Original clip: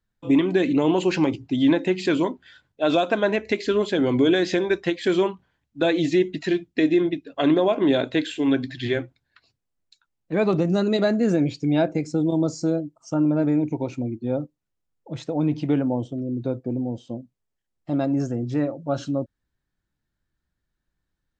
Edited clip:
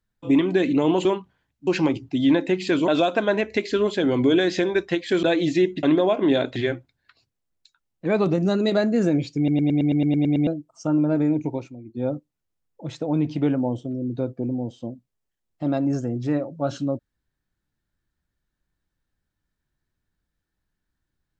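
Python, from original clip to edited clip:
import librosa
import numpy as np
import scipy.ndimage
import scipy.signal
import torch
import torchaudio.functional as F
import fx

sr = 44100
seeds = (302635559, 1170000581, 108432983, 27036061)

y = fx.edit(x, sr, fx.cut(start_s=2.26, length_s=0.57),
    fx.move(start_s=5.18, length_s=0.62, to_s=1.05),
    fx.cut(start_s=6.4, length_s=1.02),
    fx.cut(start_s=8.15, length_s=0.68),
    fx.stutter_over(start_s=11.64, slice_s=0.11, count=10),
    fx.fade_down_up(start_s=13.73, length_s=0.64, db=-12.5, fade_s=0.25, curve='qsin'), tone=tone)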